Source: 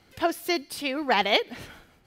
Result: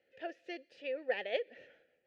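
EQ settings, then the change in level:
formant filter e
high-frequency loss of the air 110 metres
parametric band 6,600 Hz +6 dB 0.46 octaves
−2.0 dB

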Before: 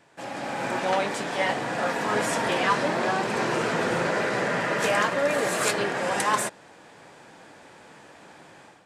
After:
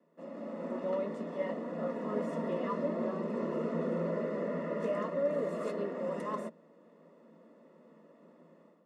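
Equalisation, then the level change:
moving average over 56 samples
Chebyshev high-pass with heavy ripple 160 Hz, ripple 9 dB
spectral tilt +1.5 dB per octave
+5.5 dB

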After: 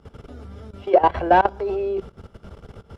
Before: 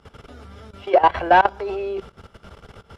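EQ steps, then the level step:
bass and treble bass −3 dB, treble +3 dB
tilt shelving filter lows +7 dB, about 630 Hz
0.0 dB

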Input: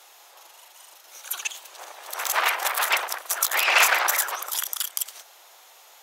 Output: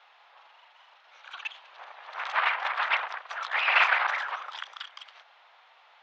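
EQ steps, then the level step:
high-pass filter 870 Hz 12 dB per octave
Bessel low-pass filter 2,300 Hz, order 6
0.0 dB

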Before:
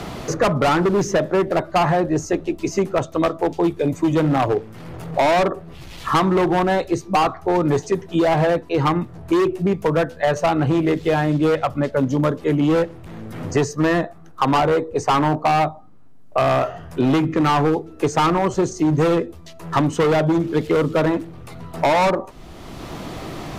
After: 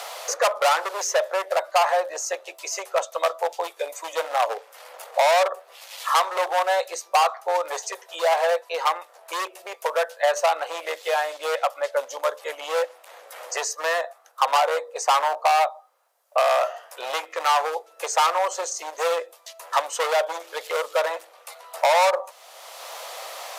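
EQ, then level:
Chebyshev high-pass filter 520 Hz, order 5
high-shelf EQ 5,400 Hz +10.5 dB
−1.0 dB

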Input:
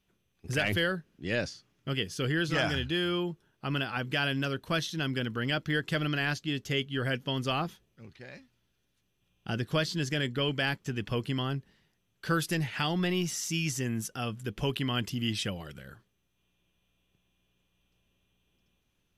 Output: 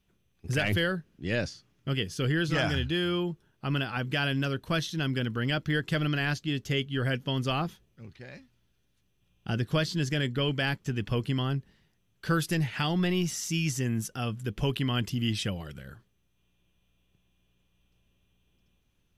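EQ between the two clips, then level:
low-shelf EQ 170 Hz +6.5 dB
0.0 dB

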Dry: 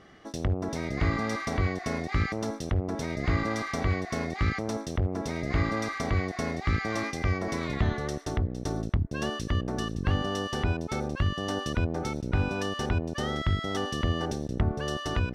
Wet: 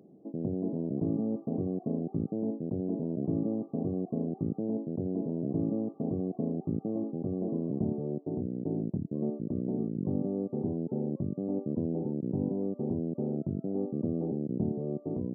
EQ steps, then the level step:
Gaussian smoothing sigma 18 samples
high-pass filter 160 Hz 24 dB per octave
+4.5 dB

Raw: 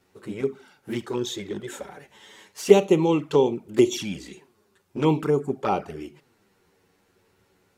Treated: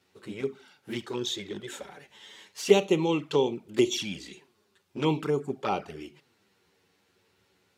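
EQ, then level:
high-pass filter 61 Hz
parametric band 3,600 Hz +7.5 dB 1.7 octaves
−5.5 dB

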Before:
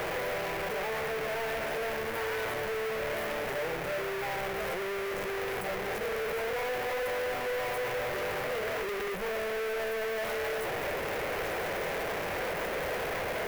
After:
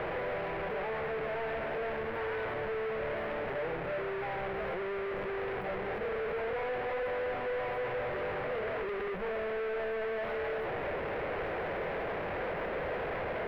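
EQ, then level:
high-frequency loss of the air 440 metres
0.0 dB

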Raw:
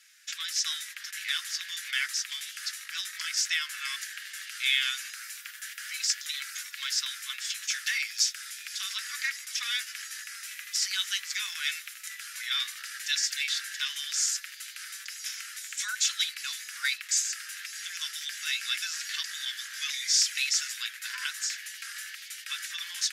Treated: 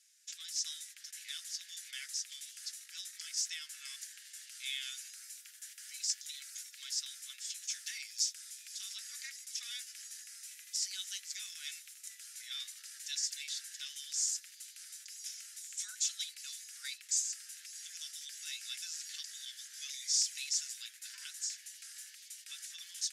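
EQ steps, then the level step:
resonant band-pass 8,000 Hz, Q 1.1
−4.5 dB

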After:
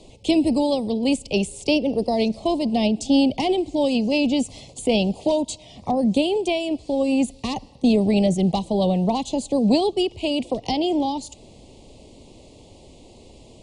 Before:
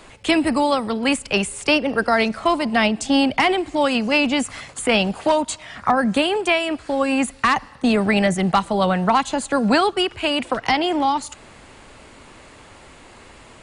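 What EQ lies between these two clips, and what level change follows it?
Butterworth band-reject 1,500 Hz, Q 0.52
high-frequency loss of the air 55 metres
+1.0 dB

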